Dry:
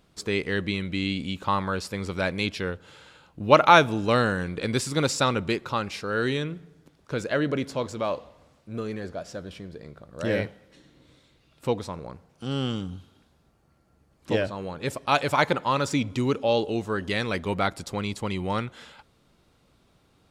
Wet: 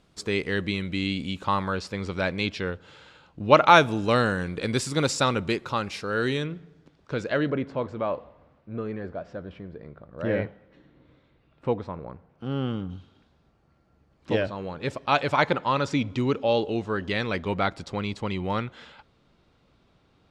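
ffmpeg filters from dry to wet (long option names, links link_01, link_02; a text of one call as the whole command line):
ffmpeg -i in.wav -af "asetnsamples=nb_out_samples=441:pad=0,asendcmd='1.73 lowpass f 5800;3.69 lowpass f 11000;6.46 lowpass f 5000;7.5 lowpass f 2000;12.9 lowpass f 4600',lowpass=10000" out.wav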